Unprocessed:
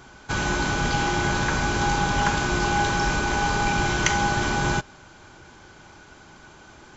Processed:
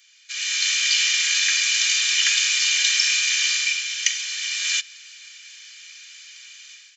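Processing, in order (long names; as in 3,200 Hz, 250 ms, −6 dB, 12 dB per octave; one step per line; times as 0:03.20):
Butterworth high-pass 2,100 Hz 36 dB per octave
comb filter 1.7 ms, depth 70%
automatic gain control gain up to 13 dB
level −1 dB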